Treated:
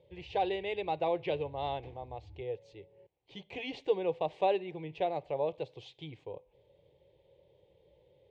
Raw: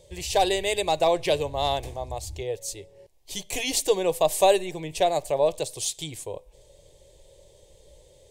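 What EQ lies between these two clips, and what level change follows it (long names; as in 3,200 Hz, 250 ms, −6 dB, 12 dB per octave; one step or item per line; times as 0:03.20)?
loudspeaker in its box 130–3,100 Hz, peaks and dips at 180 Hz −3 dB, 280 Hz −4 dB, 390 Hz −3 dB, 630 Hz −9 dB, 1,100 Hz −7 dB, 1,700 Hz −7 dB
high-shelf EQ 2,300 Hz −9.5 dB
−3.5 dB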